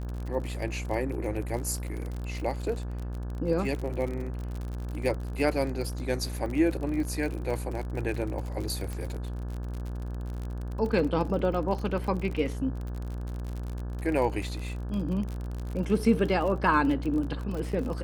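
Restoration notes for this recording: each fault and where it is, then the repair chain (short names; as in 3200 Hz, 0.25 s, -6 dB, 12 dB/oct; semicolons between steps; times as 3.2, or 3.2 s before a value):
buzz 60 Hz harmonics 29 -34 dBFS
crackle 46/s -33 dBFS
8.93 pop -23 dBFS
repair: de-click; de-hum 60 Hz, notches 29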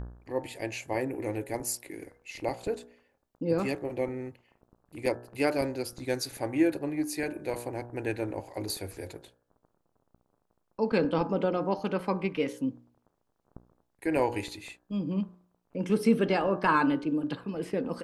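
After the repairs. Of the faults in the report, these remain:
none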